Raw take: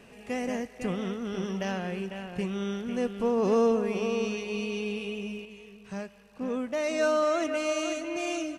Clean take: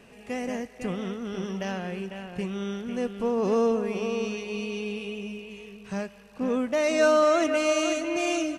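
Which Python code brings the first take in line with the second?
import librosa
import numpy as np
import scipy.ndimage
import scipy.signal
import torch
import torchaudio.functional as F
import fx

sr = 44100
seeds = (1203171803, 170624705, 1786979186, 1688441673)

y = fx.gain(x, sr, db=fx.steps((0.0, 0.0), (5.45, 5.0)))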